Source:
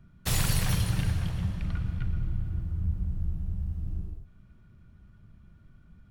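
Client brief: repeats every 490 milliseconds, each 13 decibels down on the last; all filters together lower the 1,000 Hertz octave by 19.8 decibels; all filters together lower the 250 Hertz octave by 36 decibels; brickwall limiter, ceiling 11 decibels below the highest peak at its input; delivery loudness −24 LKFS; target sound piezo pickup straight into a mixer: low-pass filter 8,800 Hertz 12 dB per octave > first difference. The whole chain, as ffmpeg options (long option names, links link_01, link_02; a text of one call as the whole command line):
ffmpeg -i in.wav -af "equalizer=frequency=250:width_type=o:gain=-8,equalizer=frequency=1000:width_type=o:gain=-4,alimiter=limit=-24dB:level=0:latency=1,lowpass=8800,aderivative,aecho=1:1:490|980|1470:0.224|0.0493|0.0108,volume=20.5dB" out.wav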